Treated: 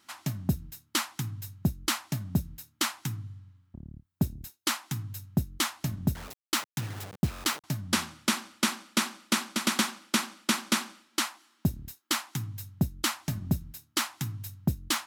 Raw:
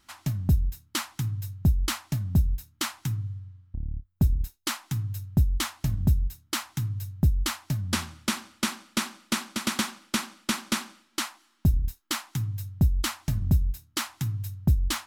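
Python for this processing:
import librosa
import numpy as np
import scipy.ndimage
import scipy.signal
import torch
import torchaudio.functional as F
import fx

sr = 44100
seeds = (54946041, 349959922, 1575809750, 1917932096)

y = fx.delta_hold(x, sr, step_db=-35.5, at=(6.15, 7.64))
y = scipy.signal.sosfilt(scipy.signal.butter(2, 170.0, 'highpass', fs=sr, output='sos'), y)
y = y * librosa.db_to_amplitude(1.5)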